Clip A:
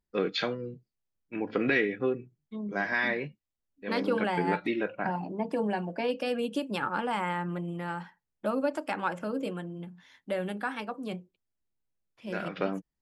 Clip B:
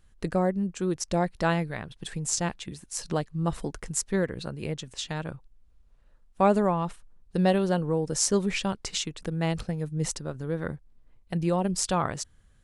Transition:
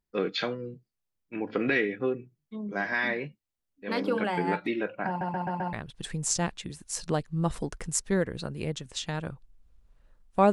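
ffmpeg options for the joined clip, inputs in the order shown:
ffmpeg -i cue0.wav -i cue1.wav -filter_complex "[0:a]apad=whole_dur=10.52,atrim=end=10.52,asplit=5[link_01][link_02][link_03][link_04][link_05];[link_01]atrim=end=5.212[link_06];[link_02]atrim=start=5.078:end=5.212[link_07];[link_03]atrim=start=5.078:end=5.212[link_08];[link_04]atrim=start=5.078:end=5.212[link_09];[link_05]atrim=start=5.078:end=5.212[link_10];[1:a]atrim=start=1.748:end=6.54[link_11];[link_06][link_07]acrossfade=duration=0.004:curve1=hsin:curve2=hsin[link_12];[link_12][link_08]acrossfade=duration=0.004:curve1=hsin:curve2=hsin[link_13];[link_13][link_09]acrossfade=duration=0.004:curve1=hsin:curve2=hsin[link_14];[link_14][link_10]acrossfade=duration=0.004:curve1=hsin:curve2=hsin[link_15];[link_15][link_11]acrossfade=duration=0.004:curve1=hsin:curve2=hsin" out.wav

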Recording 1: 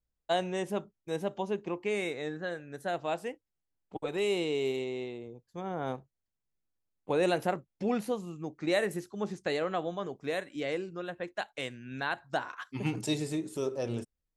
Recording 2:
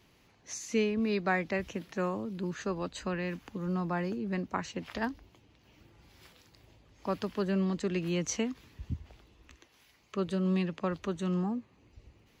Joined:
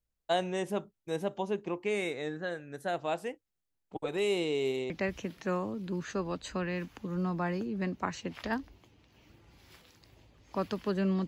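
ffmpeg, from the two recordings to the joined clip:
ffmpeg -i cue0.wav -i cue1.wav -filter_complex "[0:a]apad=whole_dur=11.27,atrim=end=11.27,atrim=end=4.902[link_01];[1:a]atrim=start=1.408:end=7.78[link_02];[link_01][link_02]acrossfade=duration=0.004:curve1=hsin:curve2=hsin" out.wav

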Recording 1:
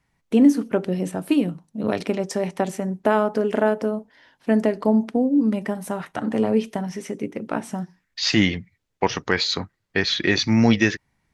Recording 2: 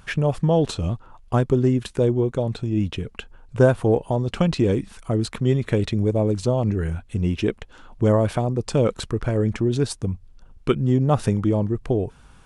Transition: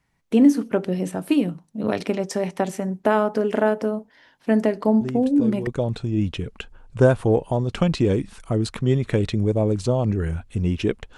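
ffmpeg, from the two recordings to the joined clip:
ffmpeg -i cue0.wav -i cue1.wav -filter_complex "[1:a]asplit=2[link_01][link_02];[0:a]apad=whole_dur=11.17,atrim=end=11.17,atrim=end=5.672[link_03];[link_02]atrim=start=2.258:end=7.76[link_04];[link_01]atrim=start=1.6:end=2.26,asetpts=PTS-STARTPTS,volume=-10.5dB,afade=type=in:duration=0.004:curve=hsin,afade=type=out:start_time=0.656:duration=0.004:curve=hsin,adelay=220941S[link_05];[link_03][link_04]acrossfade=duration=0.004:curve1=hsin:curve2=hsin[link_06];[link_06][link_05]amix=inputs=2:normalize=0" out.wav

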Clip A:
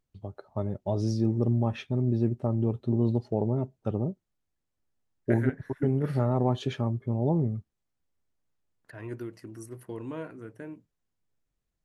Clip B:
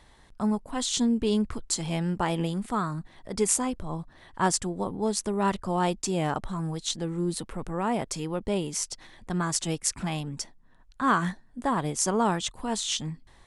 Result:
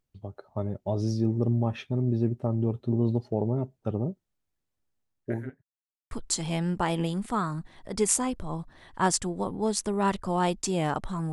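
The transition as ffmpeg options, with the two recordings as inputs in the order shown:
ffmpeg -i cue0.wav -i cue1.wav -filter_complex "[0:a]apad=whole_dur=11.32,atrim=end=11.32,asplit=2[link_01][link_02];[link_01]atrim=end=5.63,asetpts=PTS-STARTPTS,afade=type=out:start_time=4.65:duration=0.98:curve=qsin[link_03];[link_02]atrim=start=5.63:end=6.11,asetpts=PTS-STARTPTS,volume=0[link_04];[1:a]atrim=start=1.51:end=6.72,asetpts=PTS-STARTPTS,afade=type=in:duration=0.004:curve=hsin[link_05];[link_03][link_04][link_05]concat=n=3:v=0:a=1" out.wav

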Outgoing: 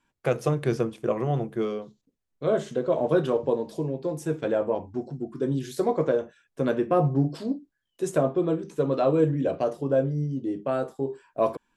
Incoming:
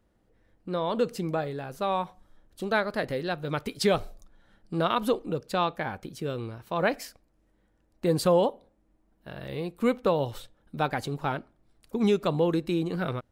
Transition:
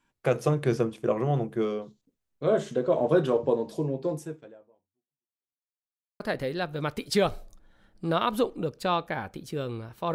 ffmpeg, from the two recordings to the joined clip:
ffmpeg -i cue0.wav -i cue1.wav -filter_complex "[0:a]apad=whole_dur=10.14,atrim=end=10.14,asplit=2[link_01][link_02];[link_01]atrim=end=5.68,asetpts=PTS-STARTPTS,afade=type=out:start_time=4.15:duration=1.53:curve=exp[link_03];[link_02]atrim=start=5.68:end=6.2,asetpts=PTS-STARTPTS,volume=0[link_04];[1:a]atrim=start=2.89:end=6.83,asetpts=PTS-STARTPTS,afade=type=in:duration=0.004:curve=hsin[link_05];[link_03][link_04][link_05]concat=n=3:v=0:a=1" out.wav

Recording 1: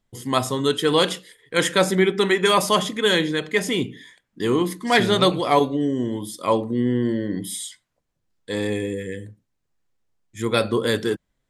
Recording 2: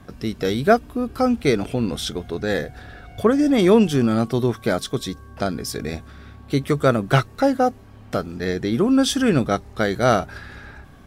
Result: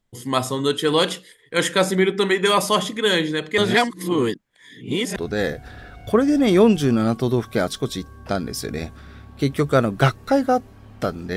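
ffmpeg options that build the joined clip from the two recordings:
ffmpeg -i cue0.wav -i cue1.wav -filter_complex "[0:a]apad=whole_dur=11.36,atrim=end=11.36,asplit=2[link_01][link_02];[link_01]atrim=end=3.582[link_03];[link_02]atrim=start=3.578:end=5.162,asetpts=PTS-STARTPTS,areverse[link_04];[1:a]atrim=start=2.268:end=8.47[link_05];[link_03][link_04]acrossfade=duration=0.004:curve1=hsin:curve2=hsin[link_06];[link_06][link_05]acrossfade=duration=0.004:curve1=hsin:curve2=hsin" out.wav

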